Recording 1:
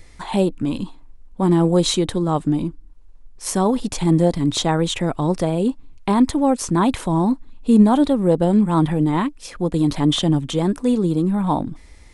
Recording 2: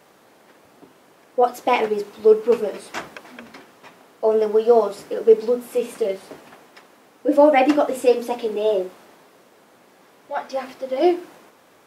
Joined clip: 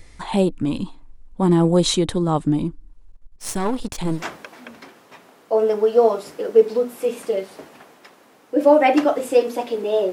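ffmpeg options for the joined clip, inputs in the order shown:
-filter_complex "[0:a]asettb=1/sr,asplit=3[a][b][c];[a]atrim=end=3.124[d];[b]atrim=start=3.12:end=4.24,asetpts=PTS-STARTPTS,afade=t=in:d=0.004:c=qsin,afade=t=out:st=1.116:d=0.004:c=qsin,aeval=exprs='if(lt(val(0),0),0.251*val(0),val(0))':c=same[e];[c]atrim=start=4.236[f];[d][e]acrossfade=d=0.004:c1=hsin:c2=qsin[g];[g][f]acrossfade=d=0.004:c1=qsin:c2=hsin,apad=whole_dur=10.12,atrim=end=10.12,atrim=end=4.24,asetpts=PTS-STARTPTS[h];[1:a]atrim=start=2.78:end=8.84,asetpts=PTS-STARTPTS[i];[h][i]acrossfade=d=0.18:c1=tri:c2=tri"

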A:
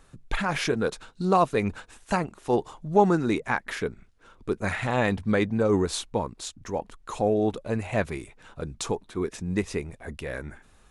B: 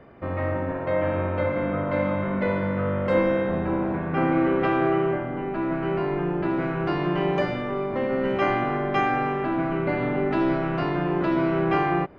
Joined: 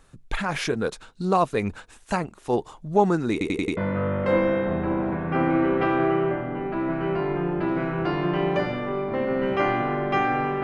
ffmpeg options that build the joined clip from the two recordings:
-filter_complex "[0:a]apad=whole_dur=10.63,atrim=end=10.63,asplit=5[a][b][c][d][e];[a]atrim=end=3.412[f];[b]atrim=start=3.318:end=3.412[g];[c]atrim=start=3.318:end=3.412[h];[d]atrim=start=3.318:end=3.412[i];[e]atrim=start=3.318:end=3.412[j];[1:a]atrim=start=2.588:end=9.45[k];[f][g]acrossfade=d=0.004:c1=hsin:c2=hsin[l];[l][h]acrossfade=d=0.004:c1=hsin:c2=hsin[m];[m][i]acrossfade=d=0.004:c1=hsin:c2=hsin[n];[n][j]acrossfade=d=0.004:c1=hsin:c2=hsin[o];[o][k]acrossfade=d=0.004:c1=hsin:c2=hsin"

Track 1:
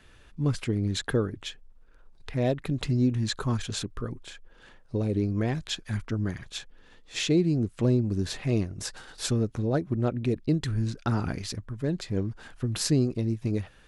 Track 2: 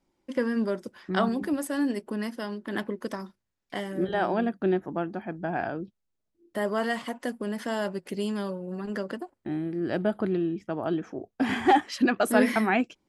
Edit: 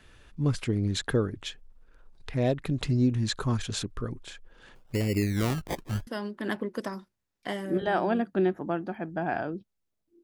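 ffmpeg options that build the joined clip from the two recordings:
-filter_complex "[0:a]asplit=3[a][b][c];[a]afade=t=out:st=4.74:d=0.02[d];[b]acrusher=samples=25:mix=1:aa=0.000001:lfo=1:lforange=15:lforate=0.74,afade=t=in:st=4.74:d=0.02,afade=t=out:st=6.07:d=0.02[e];[c]afade=t=in:st=6.07:d=0.02[f];[d][e][f]amix=inputs=3:normalize=0,apad=whole_dur=10.23,atrim=end=10.23,atrim=end=6.072[g];[1:a]atrim=start=2.338:end=6.5[h];[g][h]acrossfade=d=0.004:c1=hsin:c2=hsin"

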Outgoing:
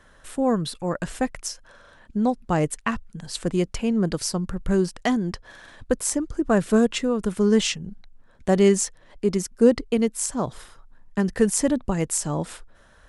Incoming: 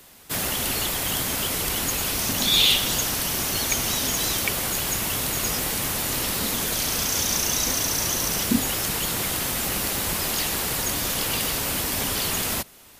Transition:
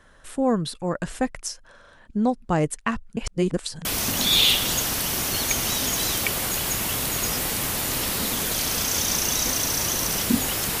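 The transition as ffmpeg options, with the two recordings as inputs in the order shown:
-filter_complex "[0:a]apad=whole_dur=10.8,atrim=end=10.8,asplit=2[a][b];[a]atrim=end=3.172[c];[b]atrim=start=3.168:end=3.852,asetpts=PTS-STARTPTS,areverse[d];[1:a]atrim=start=2.058:end=9.01[e];[c][d]acrossfade=d=0.004:c1=hsin:c2=hsin[f];[f][e]acrossfade=d=0.004:c1=hsin:c2=hsin"

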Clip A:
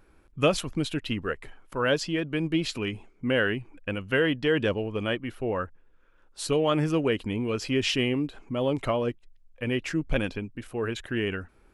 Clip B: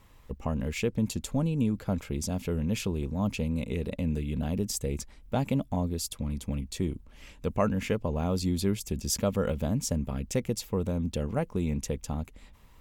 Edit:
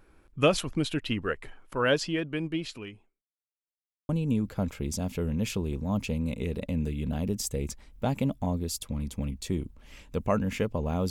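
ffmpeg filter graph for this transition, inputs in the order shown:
-filter_complex "[0:a]apad=whole_dur=11.1,atrim=end=11.1,asplit=2[a][b];[a]atrim=end=3.22,asetpts=PTS-STARTPTS,afade=t=out:st=1.96:d=1.26[c];[b]atrim=start=3.22:end=4.09,asetpts=PTS-STARTPTS,volume=0[d];[1:a]atrim=start=1.39:end=8.4,asetpts=PTS-STARTPTS,afade=t=in:d=0.004:c=hsin[e];[c][d][e]concat=n=3:v=0:a=1"

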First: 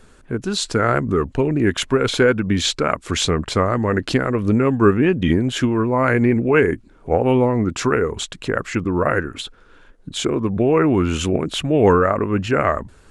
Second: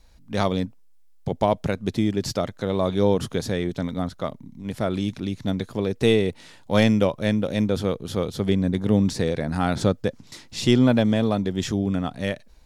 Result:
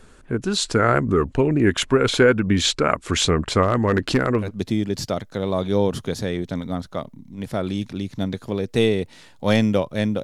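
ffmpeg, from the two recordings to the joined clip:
-filter_complex "[0:a]asplit=3[a][b][c];[a]afade=t=out:st=3.62:d=0.02[d];[b]asoftclip=type=hard:threshold=-11dB,afade=t=in:st=3.62:d=0.02,afade=t=out:st=4.51:d=0.02[e];[c]afade=t=in:st=4.51:d=0.02[f];[d][e][f]amix=inputs=3:normalize=0,apad=whole_dur=10.23,atrim=end=10.23,atrim=end=4.51,asetpts=PTS-STARTPTS[g];[1:a]atrim=start=1.66:end=7.5,asetpts=PTS-STARTPTS[h];[g][h]acrossfade=d=0.12:c1=tri:c2=tri"

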